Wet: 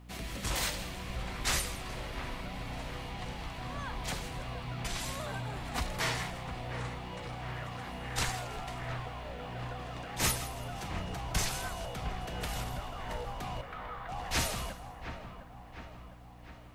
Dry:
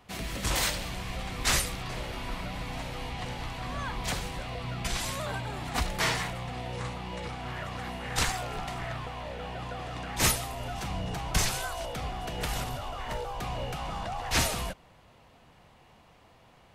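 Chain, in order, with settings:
mains hum 60 Hz, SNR 14 dB
0:13.61–0:14.09: loudspeaker in its box 490–3,100 Hz, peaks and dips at 590 Hz −8 dB, 870 Hz −8 dB, 1,300 Hz +7 dB, 1,900 Hz +4 dB, 2,800 Hz −9 dB
on a send: delay with a low-pass on its return 707 ms, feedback 55%, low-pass 2,100 Hz, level −9 dB
on the sum: bit-depth reduction 12 bits, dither triangular
feedback echo at a low word length 162 ms, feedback 35%, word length 9 bits, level −15 dB
level −5 dB

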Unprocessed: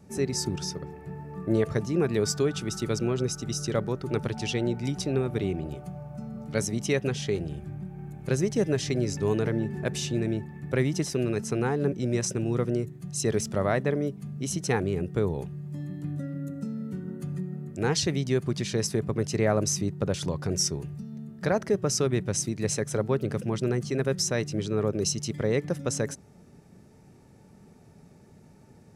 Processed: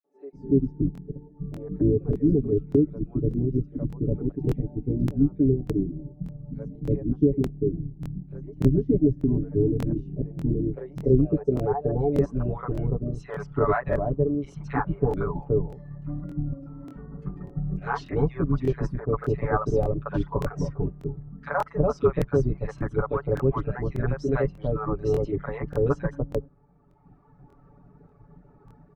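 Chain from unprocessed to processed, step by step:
sub-octave generator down 2 octaves, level −1 dB
reverb reduction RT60 1.7 s
comb filter 7 ms, depth 99%
0:16.20–0:16.79: output level in coarse steps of 10 dB
low-pass filter sweep 300 Hz → 1,200 Hz, 0:10.10–0:12.74
three-band delay without the direct sound highs, mids, lows 40/330 ms, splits 640/2,200 Hz
tape wow and flutter 17 cents
regular buffer underruns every 0.59 s, samples 1,024, repeat, from 0:00.93

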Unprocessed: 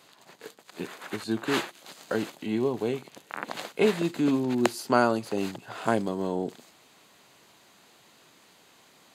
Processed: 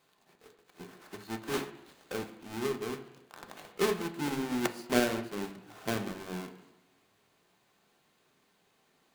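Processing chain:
each half-wave held at its own peak
hum removal 47.44 Hz, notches 40
on a send at −4 dB: convolution reverb RT60 1.1 s, pre-delay 3 ms
on the sum: expander for the loud parts 1.5 to 1, over −30 dBFS
level −9 dB

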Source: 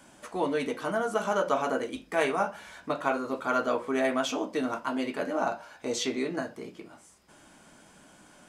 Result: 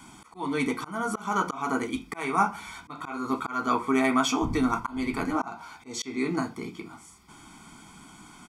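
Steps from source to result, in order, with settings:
0:04.41–0:05.35: wind on the microphone 190 Hz −35 dBFS
comb filter 0.9 ms, depth 97%
volume swells 266 ms
dynamic equaliser 3,400 Hz, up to −4 dB, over −49 dBFS, Q 2.4
level +3.5 dB

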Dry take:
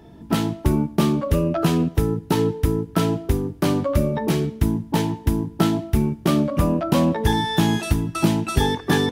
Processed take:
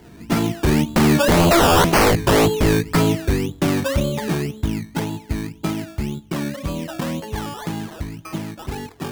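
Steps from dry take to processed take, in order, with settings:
source passing by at 0:01.88, 8 m/s, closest 1.5 metres
sine wavefolder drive 15 dB, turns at −13 dBFS
sample-and-hold swept by an LFO 17×, swing 60% 1.9 Hz
level +2.5 dB

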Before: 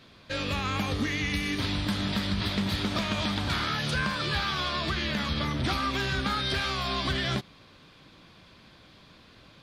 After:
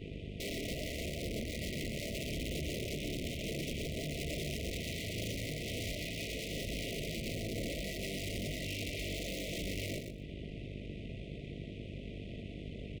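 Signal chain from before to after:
speed change −26%
parametric band 1,500 Hz −6.5 dB 1.3 octaves
downward compressor 16 to 1, threshold −40 dBFS, peak gain reduction 16.5 dB
high-shelf EQ 2,400 Hz −11 dB
wrap-around overflow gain 39.5 dB
hum with harmonics 50 Hz, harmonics 9, −57 dBFS −1 dB per octave
tube saturation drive 49 dB, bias 0.75
linear-phase brick-wall band-stop 700–1,900 Hz
repeating echo 121 ms, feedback 18%, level −7 dB
level +13.5 dB

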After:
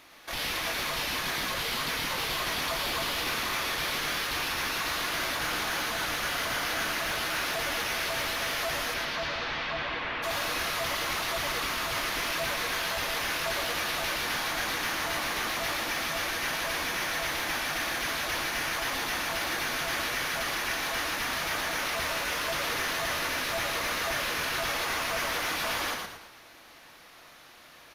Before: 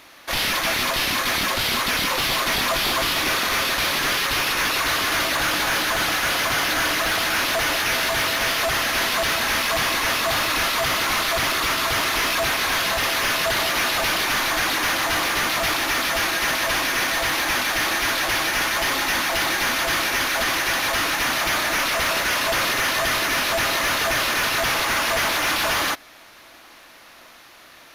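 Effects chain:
0:08.93–0:10.22: low-pass filter 6,100 Hz → 3,000 Hz 24 dB per octave
brickwall limiter −22.5 dBFS, peak gain reduction 5.5 dB
echo with shifted repeats 111 ms, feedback 41%, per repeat −92 Hz, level −4 dB
on a send at −9 dB: convolution reverb, pre-delay 3 ms
on the sum: level −7.5 dB

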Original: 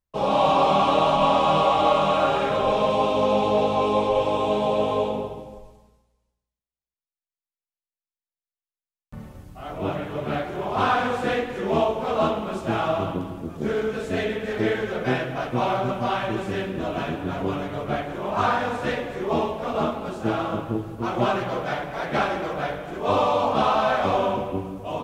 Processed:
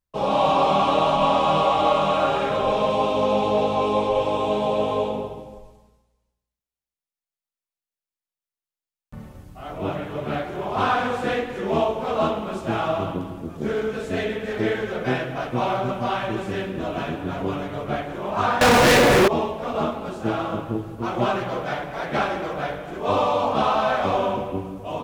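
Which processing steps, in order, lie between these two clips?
0:18.61–0:19.28: fuzz pedal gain 40 dB, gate −50 dBFS

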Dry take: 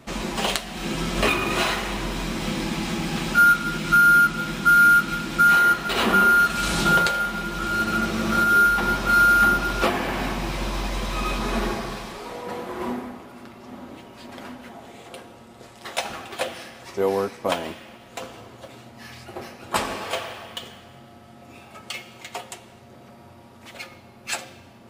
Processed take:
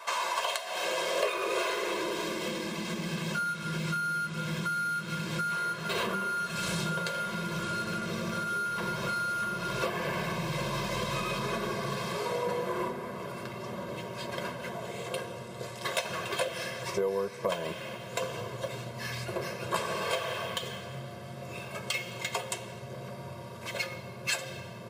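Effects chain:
high-pass filter sweep 920 Hz → 150 Hz, 0:00.11–0:03.59
in parallel at −11.5 dB: gain into a clipping stage and back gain 23 dB
on the sum: downward compressor 6 to 1, threshold −31 dBFS, peak gain reduction 18 dB
comb filter 1.9 ms, depth 93%

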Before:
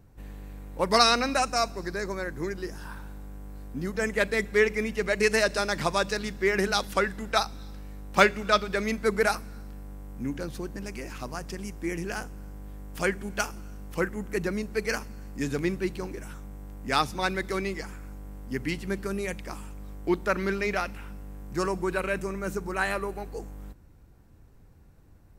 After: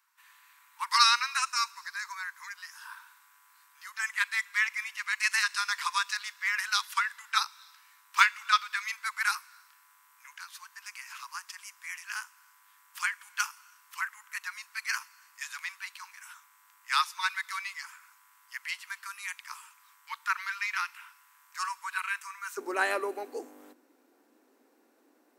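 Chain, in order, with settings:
Butterworth high-pass 940 Hz 96 dB per octave, from 0:22.57 240 Hz

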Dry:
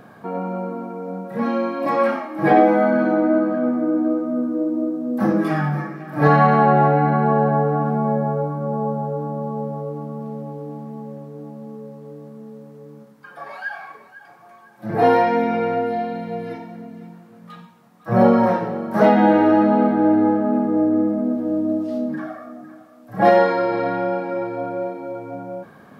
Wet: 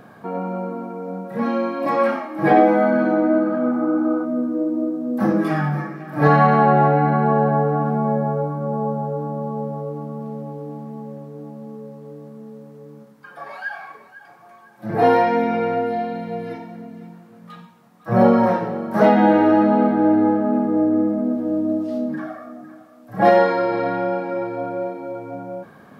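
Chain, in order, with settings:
healed spectral selection 0:03.45–0:04.22, 730–1,500 Hz before

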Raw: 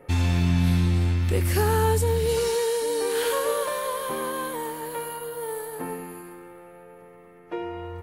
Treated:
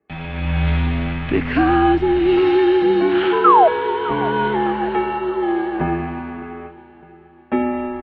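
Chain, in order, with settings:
sound drawn into the spectrogram fall, 0:03.44–0:03.68, 710–1,500 Hz −18 dBFS
automatic gain control gain up to 13 dB
noise gate with hold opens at −23 dBFS
repeating echo 608 ms, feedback 49%, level −19 dB
single-sideband voice off tune −100 Hz 170–3,200 Hz

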